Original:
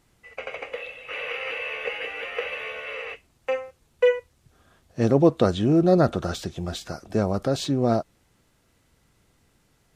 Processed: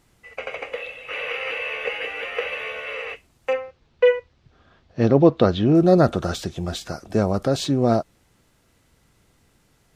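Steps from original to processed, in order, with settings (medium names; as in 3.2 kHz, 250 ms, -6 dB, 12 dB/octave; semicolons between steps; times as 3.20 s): 3.53–5.75 s: low-pass 4.9 kHz 24 dB/octave; trim +3 dB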